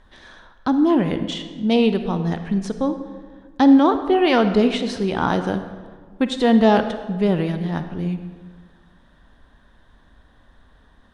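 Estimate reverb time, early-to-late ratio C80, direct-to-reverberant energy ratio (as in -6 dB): 1.6 s, 11.0 dB, 9.0 dB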